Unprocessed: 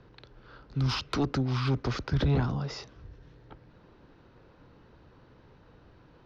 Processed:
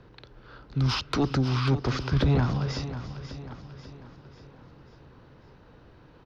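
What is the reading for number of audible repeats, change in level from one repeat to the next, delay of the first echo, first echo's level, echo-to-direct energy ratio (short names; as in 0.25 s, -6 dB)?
6, no steady repeat, 0.341 s, -20.0 dB, -10.5 dB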